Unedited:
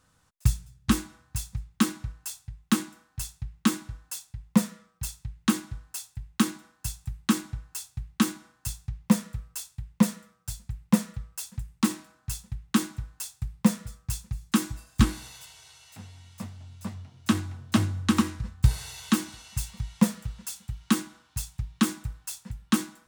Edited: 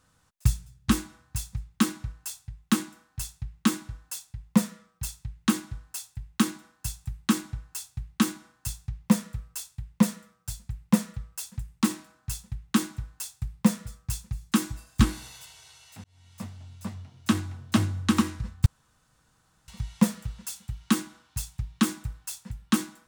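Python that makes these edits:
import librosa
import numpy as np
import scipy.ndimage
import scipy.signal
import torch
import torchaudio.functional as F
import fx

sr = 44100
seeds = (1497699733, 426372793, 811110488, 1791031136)

y = fx.edit(x, sr, fx.fade_in_span(start_s=16.04, length_s=0.39),
    fx.room_tone_fill(start_s=18.66, length_s=1.02), tone=tone)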